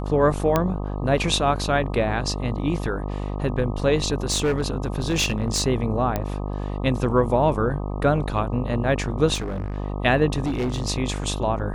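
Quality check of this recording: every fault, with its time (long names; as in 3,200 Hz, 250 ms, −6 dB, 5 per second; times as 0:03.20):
mains buzz 50 Hz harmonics 25 −28 dBFS
0:00.56: click −6 dBFS
0:04.30–0:05.62: clipping −17 dBFS
0:06.16: click −10 dBFS
0:09.34–0:09.78: clipping −24 dBFS
0:10.44–0:10.89: clipping −20.5 dBFS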